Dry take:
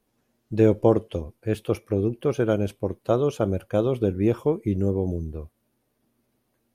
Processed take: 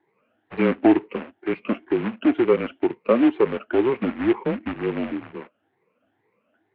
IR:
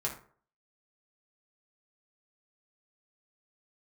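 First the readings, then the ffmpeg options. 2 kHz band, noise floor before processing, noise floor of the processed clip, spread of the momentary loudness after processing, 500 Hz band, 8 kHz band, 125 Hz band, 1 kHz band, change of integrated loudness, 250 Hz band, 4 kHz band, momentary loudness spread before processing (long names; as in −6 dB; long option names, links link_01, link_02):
+9.0 dB, −73 dBFS, −72 dBFS, 12 LU, +0.5 dB, can't be measured, −10.0 dB, +4.0 dB, +2.0 dB, +4.0 dB, +3.5 dB, 10 LU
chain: -filter_complex "[0:a]afftfilt=real='re*pow(10,17/40*sin(2*PI*(1*log(max(b,1)*sr/1024/100)/log(2)-(2.1)*(pts-256)/sr)))':imag='im*pow(10,17/40*sin(2*PI*(1*log(max(b,1)*sr/1024/100)/log(2)-(2.1)*(pts-256)/sr)))':win_size=1024:overlap=0.75,asplit=2[link_01][link_02];[link_02]acompressor=threshold=-23dB:ratio=20,volume=-1dB[link_03];[link_01][link_03]amix=inputs=2:normalize=0,acrusher=bits=3:mode=log:mix=0:aa=0.000001,highpass=frequency=410:width_type=q:width=0.5412,highpass=frequency=410:width_type=q:width=1.307,lowpass=frequency=2800:width_type=q:width=0.5176,lowpass=frequency=2800:width_type=q:width=0.7071,lowpass=frequency=2800:width_type=q:width=1.932,afreqshift=-130"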